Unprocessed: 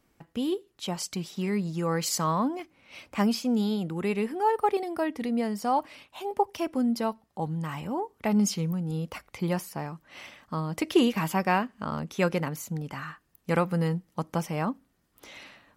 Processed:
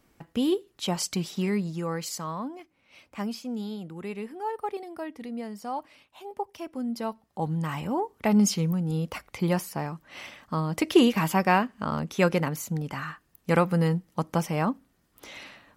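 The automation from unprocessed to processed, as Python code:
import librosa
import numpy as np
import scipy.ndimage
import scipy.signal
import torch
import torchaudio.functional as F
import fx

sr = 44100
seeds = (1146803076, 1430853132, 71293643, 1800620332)

y = fx.gain(x, sr, db=fx.line((1.32, 4.0), (2.24, -7.5), (6.7, -7.5), (7.52, 3.0)))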